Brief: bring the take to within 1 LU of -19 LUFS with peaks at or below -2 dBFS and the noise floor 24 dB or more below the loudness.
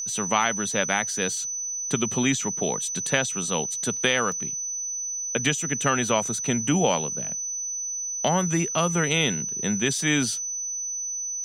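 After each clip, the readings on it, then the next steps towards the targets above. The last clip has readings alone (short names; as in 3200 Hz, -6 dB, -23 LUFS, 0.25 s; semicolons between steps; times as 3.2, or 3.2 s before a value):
dropouts 1; longest dropout 1.8 ms; steady tone 6000 Hz; tone level -28 dBFS; loudness -24.5 LUFS; peak -3.5 dBFS; loudness target -19.0 LUFS
-> interpolate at 4.32, 1.8 ms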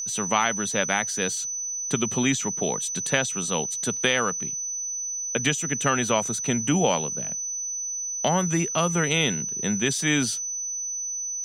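dropouts 0; steady tone 6000 Hz; tone level -28 dBFS
-> notch 6000 Hz, Q 30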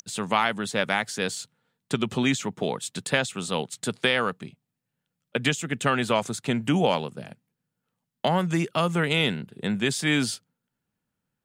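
steady tone none; loudness -26.0 LUFS; peak -4.0 dBFS; loudness target -19.0 LUFS
-> gain +7 dB; limiter -2 dBFS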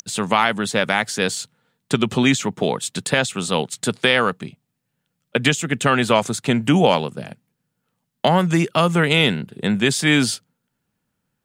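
loudness -19.0 LUFS; peak -2.0 dBFS; noise floor -76 dBFS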